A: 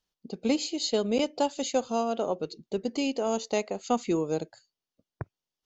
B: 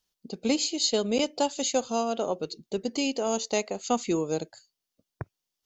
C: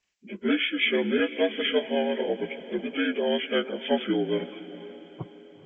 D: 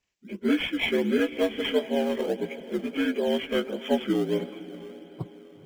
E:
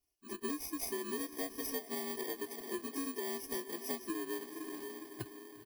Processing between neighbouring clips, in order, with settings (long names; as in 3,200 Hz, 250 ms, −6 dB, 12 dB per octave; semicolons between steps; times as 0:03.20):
high-shelf EQ 3,800 Hz +8.5 dB
partials spread apart or drawn together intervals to 77%; pitch vibrato 6.3 Hz 29 cents; feedback delay with all-pass diffusion 469 ms, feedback 50%, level −15 dB; level +2.5 dB
low-shelf EQ 340 Hz +5 dB; in parallel at −12 dB: sample-and-hold swept by an LFO 19×, swing 100% 1.5 Hz; on the sum: level −3.5 dB
samples in bit-reversed order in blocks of 32 samples; comb filter 2.8 ms, depth 90%; downward compressor, threshold −30 dBFS, peak gain reduction 14 dB; level −6.5 dB